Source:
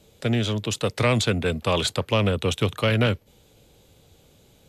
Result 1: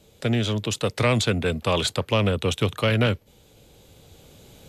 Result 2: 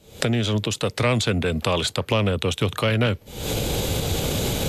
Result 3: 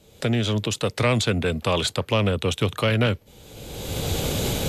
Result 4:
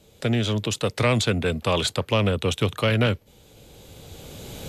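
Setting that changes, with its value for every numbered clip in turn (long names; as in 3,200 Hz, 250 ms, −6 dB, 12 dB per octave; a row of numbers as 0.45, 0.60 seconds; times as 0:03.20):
camcorder AGC, rising by: 5.2, 87, 33, 13 dB per second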